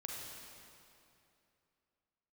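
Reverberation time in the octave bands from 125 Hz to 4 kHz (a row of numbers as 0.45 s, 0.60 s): 2.9 s, 2.9 s, 2.8 s, 2.7 s, 2.5 s, 2.2 s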